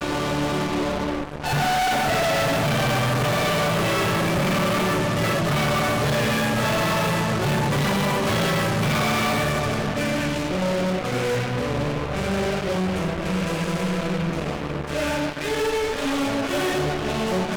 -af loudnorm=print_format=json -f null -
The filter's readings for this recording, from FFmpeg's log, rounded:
"input_i" : "-23.0",
"input_tp" : "-17.7",
"input_lra" : "3.4",
"input_thresh" : "-33.0",